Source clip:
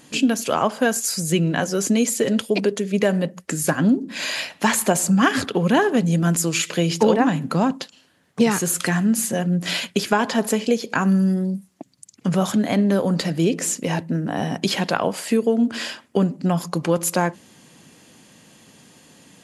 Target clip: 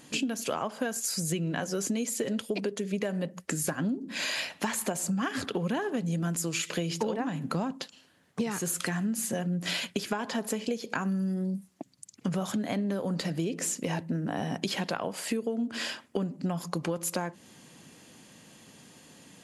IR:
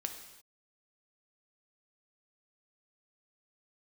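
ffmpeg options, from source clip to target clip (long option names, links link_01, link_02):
-af "acompressor=threshold=-24dB:ratio=6,volume=-3.5dB"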